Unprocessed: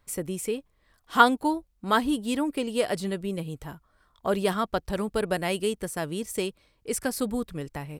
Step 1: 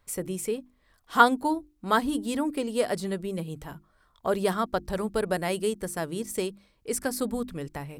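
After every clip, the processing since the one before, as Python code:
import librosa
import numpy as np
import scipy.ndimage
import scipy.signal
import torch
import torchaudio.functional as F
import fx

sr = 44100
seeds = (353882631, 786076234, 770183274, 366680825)

y = fx.hum_notches(x, sr, base_hz=50, count=7)
y = fx.dynamic_eq(y, sr, hz=2800.0, q=2.1, threshold_db=-49.0, ratio=4.0, max_db=-5)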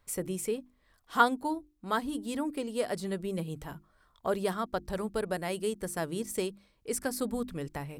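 y = fx.rider(x, sr, range_db=4, speed_s=0.5)
y = y * librosa.db_to_amplitude(-5.5)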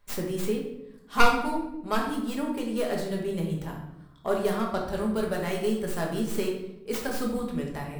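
y = fx.tracing_dist(x, sr, depth_ms=0.19)
y = fx.room_shoebox(y, sr, seeds[0], volume_m3=260.0, walls='mixed', distance_m=1.3)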